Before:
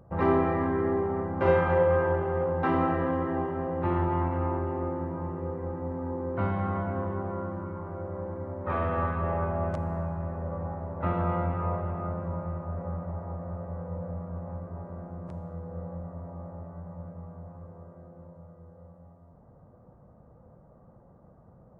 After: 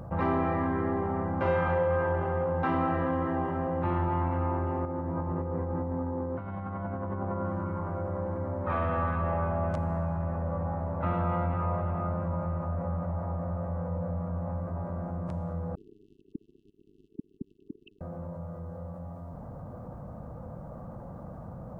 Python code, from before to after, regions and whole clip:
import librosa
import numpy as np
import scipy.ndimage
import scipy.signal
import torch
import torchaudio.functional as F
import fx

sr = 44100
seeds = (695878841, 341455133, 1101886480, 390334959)

y = fx.chain(x, sr, fx.high_shelf(hz=2400.0, db=-8.5),
    fx.over_compress(threshold_db=-35.0, ratio=-0.5), at=(4.85, 7.45))
y = fx.chain(y, sr, fx.sine_speech(),
    fx.brickwall_bandstop(low_hz=420.0, high_hz=2600.0), at=(15.75, 18.01))
y = fx.peak_eq(y, sr, hz=400.0, db=-7.0, octaves=0.4)
y = fx.notch(y, sr, hz=1900.0, q=22.0)
y = fx.env_flatten(y, sr, amount_pct=50)
y = y * librosa.db_to_amplitude(-4.0)